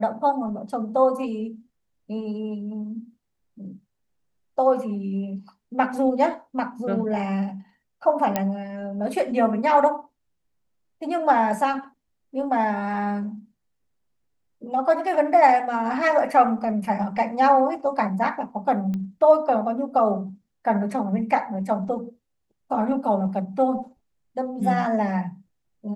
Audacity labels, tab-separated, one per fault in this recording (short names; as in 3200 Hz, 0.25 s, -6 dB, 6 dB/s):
8.360000	8.360000	pop -8 dBFS
18.940000	18.940000	pop -20 dBFS